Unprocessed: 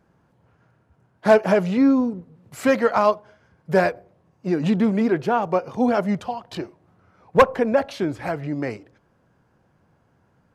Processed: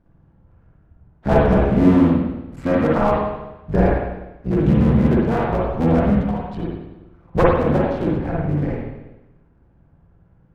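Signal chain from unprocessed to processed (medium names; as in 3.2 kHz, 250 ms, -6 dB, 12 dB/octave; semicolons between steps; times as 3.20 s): cycle switcher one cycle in 3, muted; RIAA curve playback; spring tank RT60 1 s, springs 48/54 ms, chirp 50 ms, DRR -4.5 dB; trim -6 dB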